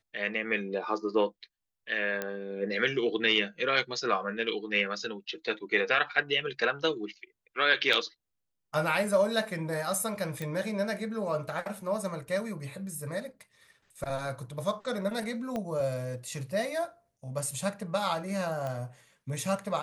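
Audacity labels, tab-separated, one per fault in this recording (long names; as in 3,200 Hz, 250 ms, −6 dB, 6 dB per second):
2.220000	2.220000	click −17 dBFS
7.930000	7.930000	drop-out 3.2 ms
10.420000	10.420000	click
15.560000	15.560000	click −21 dBFS
18.670000	18.670000	click −23 dBFS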